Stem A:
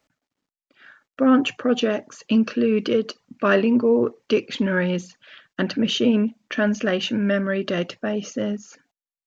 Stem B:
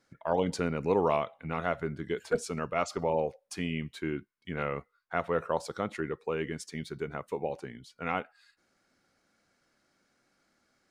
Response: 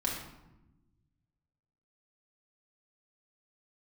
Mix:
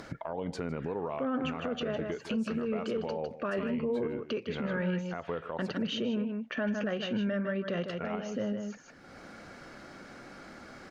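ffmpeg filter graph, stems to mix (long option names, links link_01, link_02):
-filter_complex "[0:a]equalizer=frequency=300:width=2.6:gain=-8.5,volume=-5.5dB,asplit=2[link_01][link_02];[link_02]volume=-9dB[link_03];[1:a]acompressor=threshold=-32dB:ratio=4,volume=2dB,asplit=3[link_04][link_05][link_06];[link_04]atrim=end=5.78,asetpts=PTS-STARTPTS,afade=type=out:start_time=5.776:duration=0.004:curve=hsin[link_07];[link_05]atrim=start=5.78:end=7.88,asetpts=PTS-STARTPTS,volume=0[link_08];[link_06]atrim=start=7.88,asetpts=PTS-STARTPTS,afade=type=in:duration=0.004:curve=hsin[link_09];[link_07][link_08][link_09]concat=n=3:v=0:a=1,asplit=2[link_10][link_11];[link_11]volume=-20dB[link_12];[link_03][link_12]amix=inputs=2:normalize=0,aecho=0:1:155:1[link_13];[link_01][link_10][link_13]amix=inputs=3:normalize=0,lowpass=frequency=1900:poles=1,acompressor=mode=upward:threshold=-28dB:ratio=2.5,alimiter=limit=-24dB:level=0:latency=1:release=105"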